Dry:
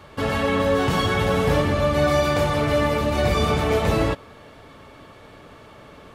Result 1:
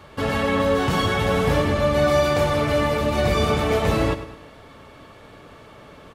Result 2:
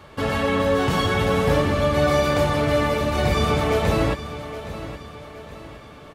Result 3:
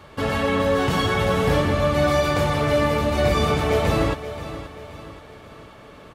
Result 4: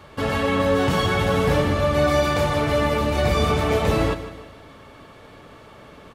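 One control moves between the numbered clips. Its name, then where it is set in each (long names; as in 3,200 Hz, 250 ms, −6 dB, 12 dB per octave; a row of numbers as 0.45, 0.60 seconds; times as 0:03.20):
repeating echo, delay time: 104, 819, 529, 152 milliseconds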